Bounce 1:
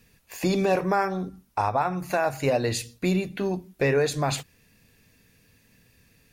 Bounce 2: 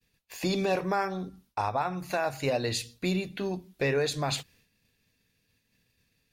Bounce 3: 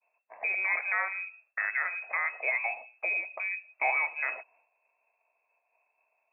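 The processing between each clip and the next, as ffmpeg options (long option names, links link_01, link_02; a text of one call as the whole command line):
ffmpeg -i in.wav -af "equalizer=frequency=3800:width=1.3:gain=6.5,agate=range=-33dB:threshold=-51dB:ratio=3:detection=peak,volume=-5dB" out.wav
ffmpeg -i in.wav -af "lowpass=frequency=2300:width_type=q:width=0.5098,lowpass=frequency=2300:width_type=q:width=0.6013,lowpass=frequency=2300:width_type=q:width=0.9,lowpass=frequency=2300:width_type=q:width=2.563,afreqshift=-2700,highpass=frequency=640:width_type=q:width=4.9,volume=-3dB" out.wav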